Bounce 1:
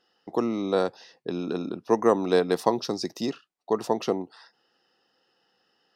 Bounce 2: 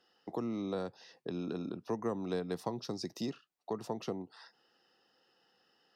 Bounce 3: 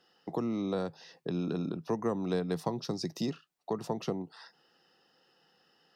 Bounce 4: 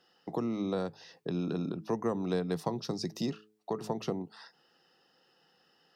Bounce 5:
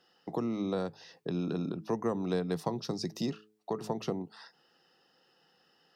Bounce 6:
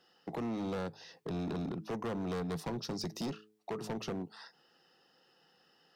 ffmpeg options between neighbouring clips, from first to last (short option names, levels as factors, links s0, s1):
-filter_complex "[0:a]acrossover=split=170[s0][s1];[s1]acompressor=threshold=0.0112:ratio=2.5[s2];[s0][s2]amix=inputs=2:normalize=0,volume=0.794"
-af "equalizer=f=160:t=o:w=0.24:g=10,volume=1.5"
-af "bandreject=f=106.7:t=h:w=4,bandreject=f=213.4:t=h:w=4,bandreject=f=320.1:t=h:w=4,bandreject=f=426.8:t=h:w=4"
-af anull
-af "volume=47.3,asoftclip=hard,volume=0.0211"